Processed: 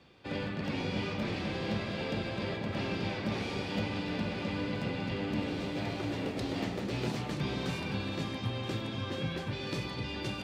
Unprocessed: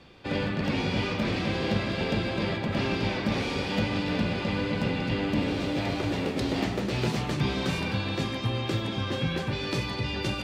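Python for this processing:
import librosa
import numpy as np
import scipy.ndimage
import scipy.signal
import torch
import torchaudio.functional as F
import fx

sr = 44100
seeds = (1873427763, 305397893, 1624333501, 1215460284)

y = scipy.signal.sosfilt(scipy.signal.butter(2, 58.0, 'highpass', fs=sr, output='sos'), x)
y = fx.echo_alternate(y, sr, ms=488, hz=910.0, feedback_pct=55, wet_db=-7)
y = F.gain(torch.from_numpy(y), -7.0).numpy()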